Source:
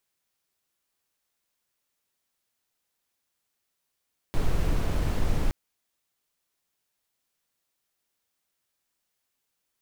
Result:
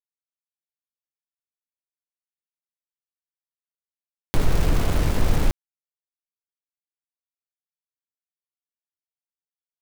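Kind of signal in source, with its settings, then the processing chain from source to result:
noise brown, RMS -23 dBFS 1.17 s
in parallel at 0 dB: upward compressor, threshold -22 dBFS; on the sum: small samples zeroed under -26.5 dBFS

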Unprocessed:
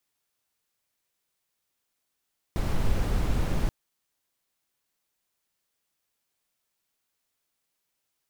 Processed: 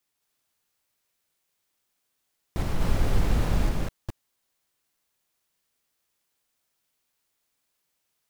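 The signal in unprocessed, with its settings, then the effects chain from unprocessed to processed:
noise brown, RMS -24 dBFS 1.13 s
chunks repeated in reverse 216 ms, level -0.5 dB

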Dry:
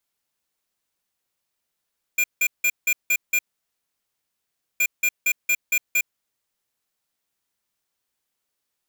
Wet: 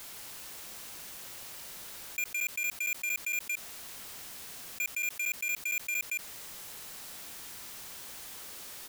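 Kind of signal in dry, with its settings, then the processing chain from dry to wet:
beep pattern square 2.4 kHz, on 0.06 s, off 0.17 s, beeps 6, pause 1.41 s, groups 2, -19.5 dBFS
saturation -31 dBFS; on a send: delay 164 ms -3.5 dB; on the sum: level flattener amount 70%

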